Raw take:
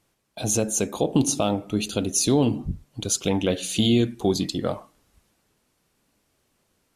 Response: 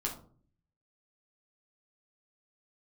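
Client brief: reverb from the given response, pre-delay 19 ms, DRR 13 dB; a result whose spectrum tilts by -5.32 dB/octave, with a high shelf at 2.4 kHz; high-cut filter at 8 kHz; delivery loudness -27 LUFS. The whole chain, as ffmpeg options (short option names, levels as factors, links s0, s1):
-filter_complex "[0:a]lowpass=8000,highshelf=f=2400:g=-4.5,asplit=2[s0][s1];[1:a]atrim=start_sample=2205,adelay=19[s2];[s1][s2]afir=irnorm=-1:irlink=0,volume=0.168[s3];[s0][s3]amix=inputs=2:normalize=0,volume=0.75"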